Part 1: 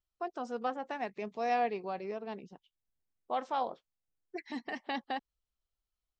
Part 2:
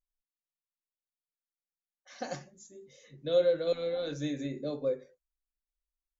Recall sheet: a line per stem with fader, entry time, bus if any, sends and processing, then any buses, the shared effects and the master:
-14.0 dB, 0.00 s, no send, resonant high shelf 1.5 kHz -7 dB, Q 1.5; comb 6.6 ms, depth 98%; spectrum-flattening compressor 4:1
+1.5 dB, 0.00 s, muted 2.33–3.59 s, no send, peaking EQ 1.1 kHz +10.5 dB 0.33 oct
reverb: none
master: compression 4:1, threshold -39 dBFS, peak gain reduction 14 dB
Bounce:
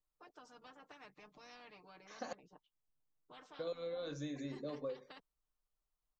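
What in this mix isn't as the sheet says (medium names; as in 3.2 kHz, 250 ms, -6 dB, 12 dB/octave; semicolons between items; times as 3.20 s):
stem 1 -14.0 dB -> -24.0 dB; stem 2 +1.5 dB -> -6.0 dB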